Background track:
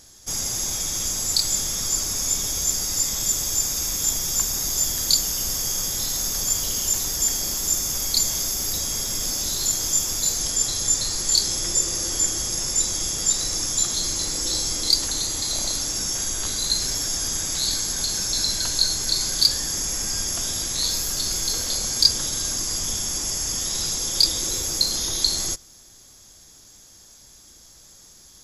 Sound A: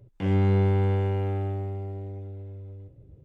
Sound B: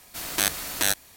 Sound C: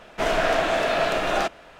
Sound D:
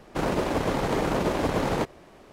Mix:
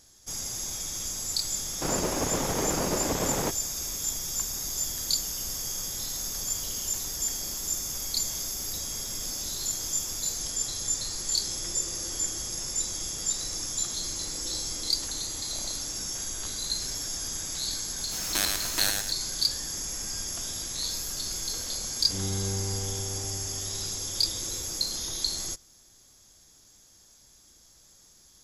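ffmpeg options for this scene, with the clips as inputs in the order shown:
-filter_complex "[0:a]volume=0.398[s0];[2:a]aecho=1:1:108|216|324|432:0.631|0.202|0.0646|0.0207[s1];[4:a]atrim=end=2.32,asetpts=PTS-STARTPTS,volume=0.631,afade=t=in:d=0.004:c=hsin,afade=t=out:st=2.316:d=0.004:c=hsin,adelay=1660[s2];[s1]atrim=end=1.16,asetpts=PTS-STARTPTS,volume=0.562,afade=t=in:d=0.004:c=hsin,afade=t=out:st=1.156:d=0.004:c=hsin,adelay=17970[s3];[1:a]atrim=end=3.24,asetpts=PTS-STARTPTS,volume=0.299,afade=t=in:d=0.004:c=hsin,afade=t=out:st=3.236:d=0.004:c=hsin,adelay=21900[s4];[s0][s2][s3][s4]amix=inputs=4:normalize=0"

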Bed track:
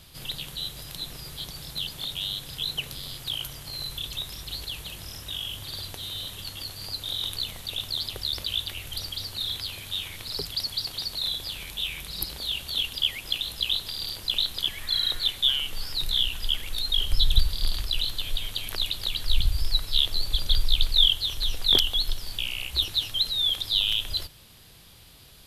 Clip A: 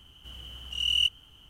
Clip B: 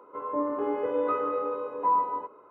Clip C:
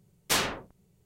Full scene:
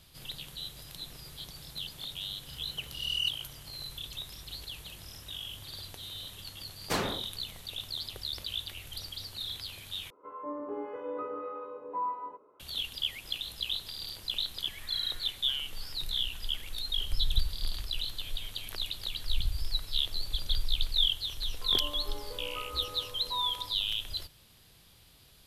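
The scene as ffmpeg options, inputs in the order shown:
-filter_complex "[2:a]asplit=2[s0][s1];[0:a]volume=0.422[s2];[3:a]tiltshelf=f=1500:g=6.5[s3];[s0]acrossover=split=800[s4][s5];[s4]aeval=exprs='val(0)*(1-0.5/2+0.5/2*cos(2*PI*1.7*n/s))':c=same[s6];[s5]aeval=exprs='val(0)*(1-0.5/2-0.5/2*cos(2*PI*1.7*n/s))':c=same[s7];[s6][s7]amix=inputs=2:normalize=0[s8];[s1]highpass=f=660:p=1[s9];[s2]asplit=2[s10][s11];[s10]atrim=end=10.104[s12];[s8]atrim=end=2.5,asetpts=PTS-STARTPTS,volume=0.447[s13];[s11]atrim=start=12.596[s14];[1:a]atrim=end=1.49,asetpts=PTS-STARTPTS,volume=0.473,afade=t=in:d=0.004:c=hsin,afade=t=out:st=1.486:d=0.004:c=hsin,adelay=2220[s15];[s3]atrim=end=1.05,asetpts=PTS-STARTPTS,volume=0.562,afade=t=in:d=0.004:c=hsin,afade=t=out:st=1.046:d=0.004:c=hsin,adelay=6600[s16];[s9]atrim=end=2.5,asetpts=PTS-STARTPTS,volume=0.266,afade=t=in:d=0.004:c=hsin,afade=t=out:st=2.496:d=0.004:c=hsin,adelay=21470[s17];[s12][s13]acrossfade=d=0.004:c1=hsin:c2=hsin[s18];[s18][s14]acrossfade=d=0.004:c1=hsin:c2=hsin[s19];[s19][s15][s16][s17]amix=inputs=4:normalize=0"

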